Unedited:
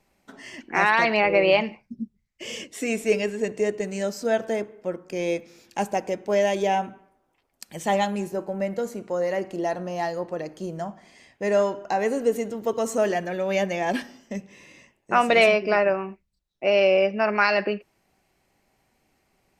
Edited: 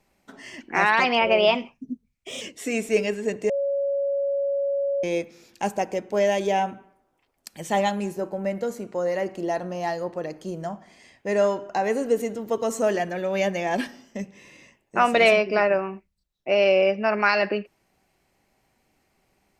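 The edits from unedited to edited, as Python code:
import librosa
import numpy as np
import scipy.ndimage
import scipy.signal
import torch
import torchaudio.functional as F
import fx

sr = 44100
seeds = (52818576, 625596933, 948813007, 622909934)

y = fx.edit(x, sr, fx.speed_span(start_s=1.0, length_s=1.57, speed=1.11),
    fx.bleep(start_s=3.65, length_s=1.54, hz=559.0, db=-21.5), tone=tone)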